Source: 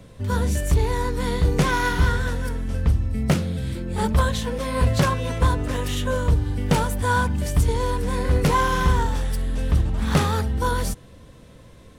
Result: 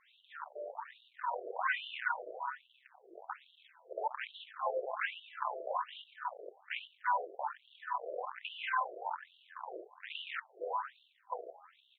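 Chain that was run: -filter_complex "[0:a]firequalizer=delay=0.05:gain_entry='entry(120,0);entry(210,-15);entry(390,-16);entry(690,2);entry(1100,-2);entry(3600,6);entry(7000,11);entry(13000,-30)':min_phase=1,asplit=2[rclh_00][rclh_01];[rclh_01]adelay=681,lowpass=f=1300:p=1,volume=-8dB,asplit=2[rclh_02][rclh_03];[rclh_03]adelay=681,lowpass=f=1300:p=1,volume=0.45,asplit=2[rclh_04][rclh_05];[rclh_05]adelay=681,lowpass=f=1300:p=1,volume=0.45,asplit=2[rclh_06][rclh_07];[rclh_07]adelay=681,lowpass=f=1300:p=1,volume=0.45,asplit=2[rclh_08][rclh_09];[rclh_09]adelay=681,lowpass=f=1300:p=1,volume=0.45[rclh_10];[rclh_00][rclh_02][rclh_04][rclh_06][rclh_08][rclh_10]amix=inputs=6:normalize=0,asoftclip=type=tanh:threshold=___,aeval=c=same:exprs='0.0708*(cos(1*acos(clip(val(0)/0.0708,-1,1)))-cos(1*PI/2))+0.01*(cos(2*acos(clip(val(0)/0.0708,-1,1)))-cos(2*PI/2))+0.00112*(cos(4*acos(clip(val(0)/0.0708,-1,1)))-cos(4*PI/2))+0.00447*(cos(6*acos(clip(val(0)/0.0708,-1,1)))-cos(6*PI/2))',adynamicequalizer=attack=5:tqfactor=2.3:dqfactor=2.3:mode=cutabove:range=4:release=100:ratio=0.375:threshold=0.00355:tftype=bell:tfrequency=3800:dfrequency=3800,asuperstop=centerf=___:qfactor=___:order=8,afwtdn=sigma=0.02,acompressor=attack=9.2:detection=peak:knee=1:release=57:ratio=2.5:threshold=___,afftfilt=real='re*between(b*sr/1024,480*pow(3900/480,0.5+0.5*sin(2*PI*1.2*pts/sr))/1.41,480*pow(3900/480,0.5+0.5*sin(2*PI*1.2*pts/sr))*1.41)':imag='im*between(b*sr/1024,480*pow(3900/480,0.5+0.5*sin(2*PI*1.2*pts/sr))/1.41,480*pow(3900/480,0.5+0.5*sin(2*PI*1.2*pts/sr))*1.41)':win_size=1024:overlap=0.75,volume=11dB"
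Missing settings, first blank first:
-23dB, 5100, 1.6, -39dB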